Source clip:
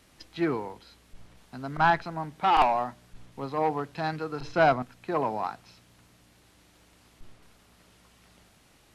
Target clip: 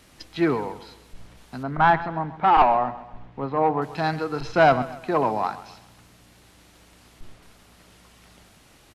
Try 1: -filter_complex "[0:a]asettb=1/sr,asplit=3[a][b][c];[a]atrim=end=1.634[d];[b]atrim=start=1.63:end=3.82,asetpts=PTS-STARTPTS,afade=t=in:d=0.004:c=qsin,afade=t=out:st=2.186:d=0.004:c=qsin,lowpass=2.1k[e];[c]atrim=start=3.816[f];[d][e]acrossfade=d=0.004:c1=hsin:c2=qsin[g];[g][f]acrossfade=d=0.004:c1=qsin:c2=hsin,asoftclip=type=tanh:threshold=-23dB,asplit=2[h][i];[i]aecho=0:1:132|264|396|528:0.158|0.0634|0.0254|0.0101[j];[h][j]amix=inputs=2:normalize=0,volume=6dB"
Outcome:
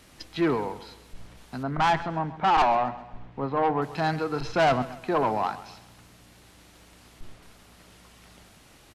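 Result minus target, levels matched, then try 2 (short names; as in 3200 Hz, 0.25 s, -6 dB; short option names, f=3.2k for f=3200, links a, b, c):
soft clip: distortion +13 dB
-filter_complex "[0:a]asettb=1/sr,asplit=3[a][b][c];[a]atrim=end=1.634[d];[b]atrim=start=1.63:end=3.82,asetpts=PTS-STARTPTS,afade=t=in:d=0.004:c=qsin,afade=t=out:st=2.186:d=0.004:c=qsin,lowpass=2.1k[e];[c]atrim=start=3.816[f];[d][e]acrossfade=d=0.004:c1=hsin:c2=qsin[g];[g][f]acrossfade=d=0.004:c1=qsin:c2=hsin,asoftclip=type=tanh:threshold=-12dB,asplit=2[h][i];[i]aecho=0:1:132|264|396|528:0.158|0.0634|0.0254|0.0101[j];[h][j]amix=inputs=2:normalize=0,volume=6dB"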